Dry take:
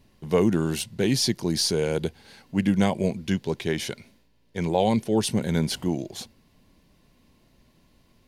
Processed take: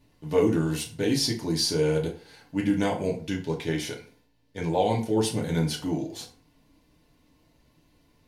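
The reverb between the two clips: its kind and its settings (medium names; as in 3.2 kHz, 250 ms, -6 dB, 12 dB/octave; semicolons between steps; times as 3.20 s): FDN reverb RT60 0.42 s, low-frequency decay 0.8×, high-frequency decay 0.7×, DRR -1.5 dB; trim -5.5 dB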